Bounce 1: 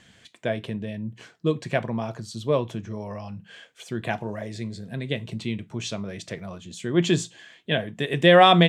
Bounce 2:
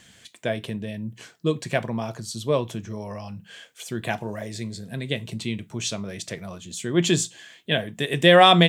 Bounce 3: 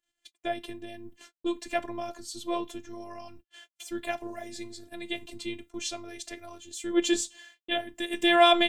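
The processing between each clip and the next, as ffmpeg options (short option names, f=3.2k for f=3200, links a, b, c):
-af "aemphasis=mode=production:type=50kf"
-af "acompressor=mode=upward:threshold=-41dB:ratio=2.5,afftfilt=real='hypot(re,im)*cos(PI*b)':imag='0':win_size=512:overlap=0.75,agate=range=-41dB:threshold=-47dB:ratio=16:detection=peak,volume=-2dB"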